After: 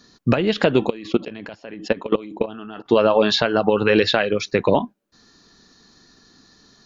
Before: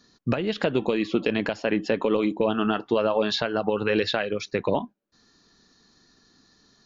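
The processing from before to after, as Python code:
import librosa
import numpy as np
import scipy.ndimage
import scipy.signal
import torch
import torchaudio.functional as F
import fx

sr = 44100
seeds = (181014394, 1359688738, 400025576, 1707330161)

y = fx.level_steps(x, sr, step_db=21, at=(0.87, 2.87), fade=0.02)
y = y * 10.0 ** (7.0 / 20.0)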